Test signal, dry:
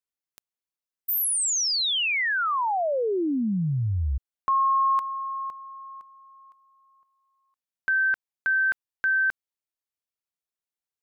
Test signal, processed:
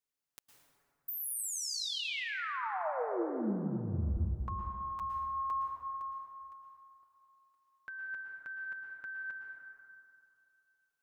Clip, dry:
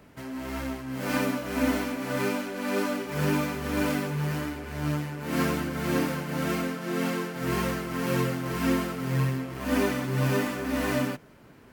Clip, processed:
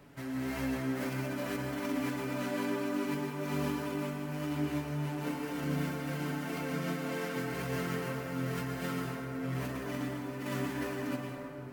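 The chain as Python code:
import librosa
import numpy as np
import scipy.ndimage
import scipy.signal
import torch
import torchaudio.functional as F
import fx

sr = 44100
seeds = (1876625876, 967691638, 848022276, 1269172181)

y = x + 0.55 * np.pad(x, (int(7.1 * sr / 1000.0), 0))[:len(x)]
y = fx.over_compress(y, sr, threshold_db=-31.0, ratio=-1.0)
y = fx.rev_plate(y, sr, seeds[0], rt60_s=2.6, hf_ratio=0.4, predelay_ms=100, drr_db=0.0)
y = F.gain(torch.from_numpy(y), -8.0).numpy()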